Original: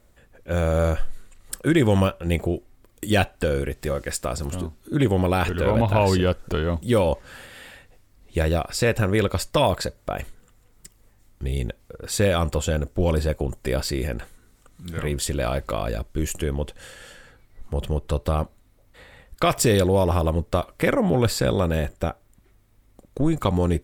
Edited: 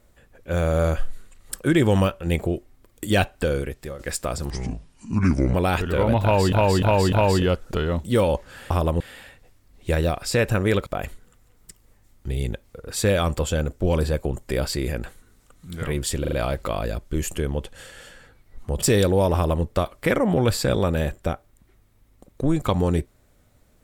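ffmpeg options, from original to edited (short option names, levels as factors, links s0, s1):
-filter_complex "[0:a]asplit=14[s0][s1][s2][s3][s4][s5][s6][s7][s8][s9][s10][s11][s12][s13];[s0]atrim=end=3.99,asetpts=PTS-STARTPTS,afade=t=out:st=3.51:d=0.48:silence=0.251189[s14];[s1]atrim=start=3.99:end=4.504,asetpts=PTS-STARTPTS,afade=t=in:d=0.004:c=hsin:silence=0.251189[s15];[s2]atrim=start=4.5:end=5.22,asetpts=PTS-STARTPTS,asetrate=30429,aresample=44100,atrim=end_sample=46017,asetpts=PTS-STARTPTS[s16];[s3]atrim=start=5.216:end=6.202[s17];[s4]atrim=start=5.898:end=6.202[s18];[s5]atrim=start=5.898:end=6.202[s19];[s6]atrim=start=5.898:end=7.482[s20];[s7]atrim=start=20.098:end=20.402[s21];[s8]atrim=start=7.478:end=9.342[s22];[s9]atrim=start=10.018:end=15.402[s23];[s10]atrim=start=15.358:end=15.402[s24];[s11]atrim=start=15.358:end=15.402[s25];[s12]atrim=start=15.358:end=17.862[s26];[s13]atrim=start=19.588[s27];[s14][s15]concat=n=2:v=0:a=1[s28];[s28][s16]acrossfade=d=0.004:c1=hsin:c2=hsin[s29];[s29][s17]acrossfade=d=0.004:c1=hsin:c2=hsin[s30];[s30][s18]acrossfade=d=0.004:c1=hsin:c2=hsin[s31];[s31][s19]acrossfade=d=0.004:c1=hsin:c2=hsin[s32];[s32][s20]acrossfade=d=0.004:c1=hsin:c2=hsin[s33];[s33][s21]acrossfade=d=0.004:c1=hsin:c2=hsin[s34];[s34][s22]acrossfade=d=0.004:c1=hsin:c2=hsin[s35];[s35][s23]acrossfade=d=0.004:c1=hsin:c2=hsin[s36];[s36][s24]acrossfade=d=0.004:c1=hsin:c2=hsin[s37];[s37][s25]acrossfade=d=0.004:c1=hsin:c2=hsin[s38];[s38][s26]acrossfade=d=0.004:c1=hsin:c2=hsin[s39];[s39][s27]acrossfade=d=0.004:c1=hsin:c2=hsin"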